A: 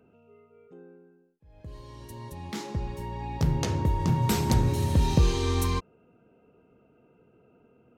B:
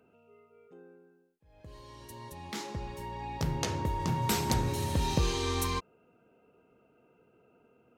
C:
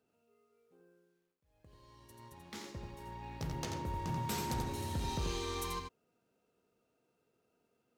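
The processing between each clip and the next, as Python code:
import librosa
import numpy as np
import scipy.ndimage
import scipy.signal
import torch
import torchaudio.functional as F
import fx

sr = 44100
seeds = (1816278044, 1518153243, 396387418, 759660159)

y1 = fx.low_shelf(x, sr, hz=360.0, db=-8.5)
y2 = fx.law_mismatch(y1, sr, coded='A')
y2 = 10.0 ** (-25.0 / 20.0) * np.tanh(y2 / 10.0 ** (-25.0 / 20.0))
y2 = y2 + 10.0 ** (-5.5 / 20.0) * np.pad(y2, (int(86 * sr / 1000.0), 0))[:len(y2)]
y2 = y2 * librosa.db_to_amplitude(-5.5)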